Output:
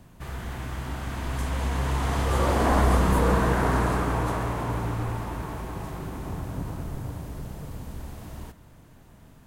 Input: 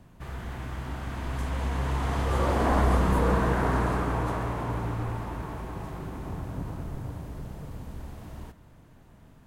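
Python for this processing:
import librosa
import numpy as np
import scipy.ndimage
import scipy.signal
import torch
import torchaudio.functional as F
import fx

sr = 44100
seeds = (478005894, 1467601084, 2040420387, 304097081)

y = fx.high_shelf(x, sr, hz=4400.0, db=6.5)
y = y * librosa.db_to_amplitude(2.0)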